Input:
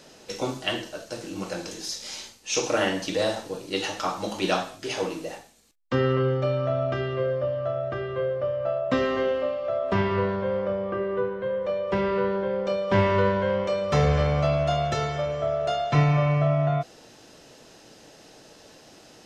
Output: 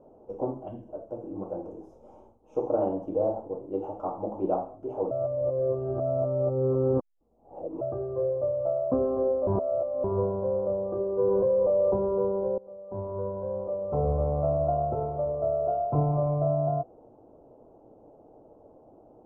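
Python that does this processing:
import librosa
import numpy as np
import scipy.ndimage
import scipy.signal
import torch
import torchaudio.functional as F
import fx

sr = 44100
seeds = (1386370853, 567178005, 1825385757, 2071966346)

y = fx.spec_box(x, sr, start_s=0.68, length_s=0.21, low_hz=300.0, high_hz=1500.0, gain_db=-12)
y = fx.env_flatten(y, sr, amount_pct=100, at=(11.19, 11.96))
y = fx.edit(y, sr, fx.reverse_span(start_s=5.11, length_s=2.7),
    fx.reverse_span(start_s=9.47, length_s=0.57),
    fx.fade_in_from(start_s=12.58, length_s=2.07, floor_db=-22.5), tone=tone)
y = scipy.signal.sosfilt(scipy.signal.cheby2(4, 40, 1700.0, 'lowpass', fs=sr, output='sos'), y)
y = fx.peak_eq(y, sr, hz=170.0, db=-7.5, octaves=0.83)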